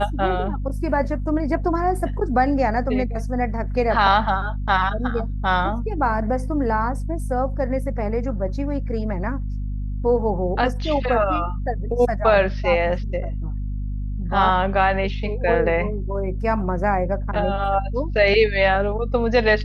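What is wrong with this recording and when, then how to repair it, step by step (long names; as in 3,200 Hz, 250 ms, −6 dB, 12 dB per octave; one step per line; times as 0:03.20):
mains hum 50 Hz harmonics 5 −26 dBFS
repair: hum removal 50 Hz, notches 5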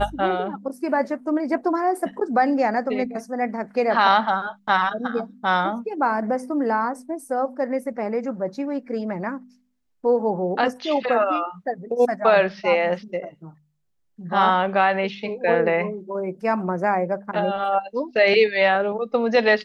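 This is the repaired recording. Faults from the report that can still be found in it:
none of them is left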